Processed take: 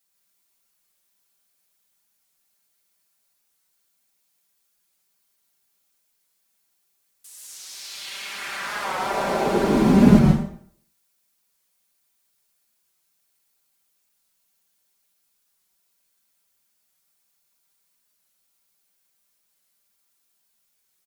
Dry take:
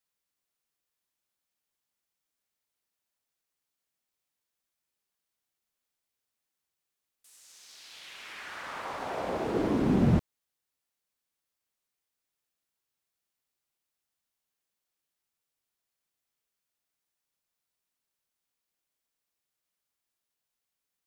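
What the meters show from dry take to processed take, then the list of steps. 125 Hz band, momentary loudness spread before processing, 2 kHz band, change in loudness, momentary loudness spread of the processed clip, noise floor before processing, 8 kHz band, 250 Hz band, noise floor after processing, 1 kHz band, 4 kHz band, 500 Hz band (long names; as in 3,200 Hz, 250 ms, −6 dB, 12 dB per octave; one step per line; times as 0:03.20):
+9.0 dB, 21 LU, +11.0 dB, +8.5 dB, 22 LU, below −85 dBFS, +15.0 dB, +11.5 dB, −71 dBFS, +11.0 dB, +12.0 dB, +9.5 dB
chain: high-shelf EQ 4,900 Hz +8.5 dB
comb filter 5.1 ms
dense smooth reverb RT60 0.58 s, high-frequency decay 0.85×, pre-delay 105 ms, DRR −0.5 dB
wow of a warped record 45 rpm, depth 100 cents
level +5 dB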